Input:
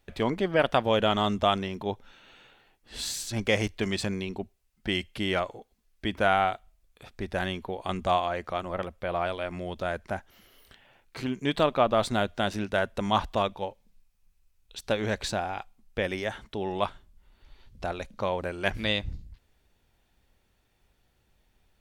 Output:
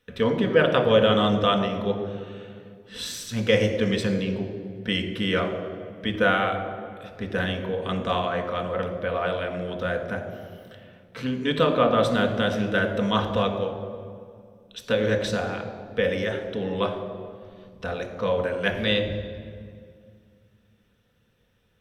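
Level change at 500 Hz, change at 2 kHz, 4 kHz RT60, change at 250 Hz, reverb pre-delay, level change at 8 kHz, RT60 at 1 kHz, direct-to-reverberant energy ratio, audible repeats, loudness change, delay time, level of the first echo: +5.5 dB, +4.5 dB, 1.4 s, +6.0 dB, 3 ms, -1.5 dB, 2.0 s, 3.0 dB, no echo, +4.0 dB, no echo, no echo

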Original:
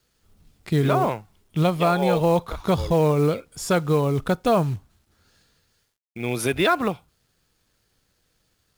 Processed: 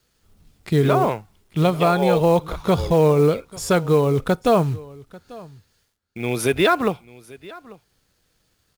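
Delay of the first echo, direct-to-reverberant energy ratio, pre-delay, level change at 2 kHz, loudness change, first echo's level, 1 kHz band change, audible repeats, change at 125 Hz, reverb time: 842 ms, no reverb, no reverb, +2.0 dB, +3.0 dB, -21.5 dB, +2.0 dB, 1, +2.0 dB, no reverb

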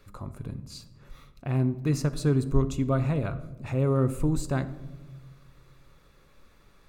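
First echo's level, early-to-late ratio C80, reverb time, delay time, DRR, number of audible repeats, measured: no echo, 17.0 dB, 1.3 s, no echo, 11.0 dB, no echo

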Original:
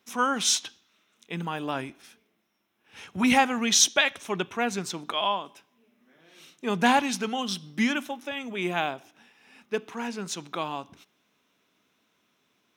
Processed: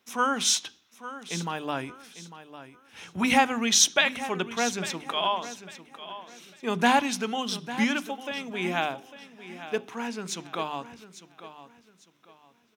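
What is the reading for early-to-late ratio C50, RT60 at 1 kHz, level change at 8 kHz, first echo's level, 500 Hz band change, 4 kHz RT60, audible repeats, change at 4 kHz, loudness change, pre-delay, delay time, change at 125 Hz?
no reverb, no reverb, 0.0 dB, -14.0 dB, 0.0 dB, no reverb, 3, 0.0 dB, 0.0 dB, no reverb, 850 ms, -0.5 dB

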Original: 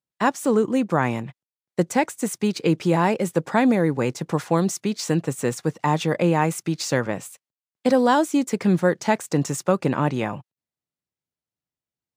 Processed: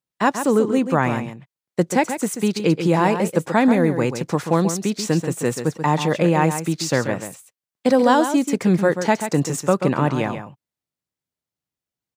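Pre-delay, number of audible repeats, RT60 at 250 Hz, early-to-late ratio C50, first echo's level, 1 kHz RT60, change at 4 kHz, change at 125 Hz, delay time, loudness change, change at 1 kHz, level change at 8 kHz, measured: no reverb, 1, no reverb, no reverb, -9.0 dB, no reverb, +2.5 dB, +2.5 dB, 135 ms, +2.5 dB, +2.5 dB, +2.5 dB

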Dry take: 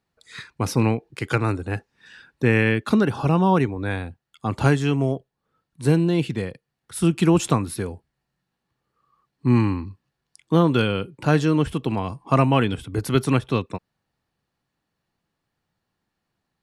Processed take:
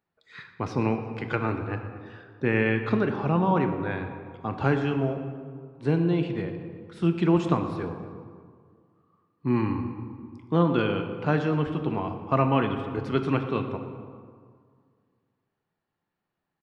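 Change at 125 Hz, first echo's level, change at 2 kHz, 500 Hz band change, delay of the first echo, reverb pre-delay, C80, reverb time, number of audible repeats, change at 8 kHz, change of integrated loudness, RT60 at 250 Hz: -6.0 dB, -18.0 dB, -4.5 dB, -3.0 dB, 118 ms, 3 ms, 8.5 dB, 1.9 s, 1, under -20 dB, -5.0 dB, 2.1 s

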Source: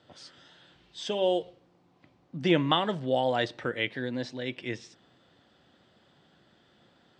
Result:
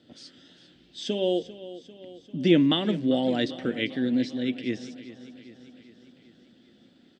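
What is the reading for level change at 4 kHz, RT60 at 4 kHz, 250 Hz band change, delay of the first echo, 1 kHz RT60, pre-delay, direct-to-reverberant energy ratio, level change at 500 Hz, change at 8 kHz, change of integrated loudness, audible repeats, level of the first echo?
+1.5 dB, no reverb, +8.0 dB, 396 ms, no reverb, no reverb, no reverb, +1.0 dB, no reading, +3.0 dB, 5, -15.5 dB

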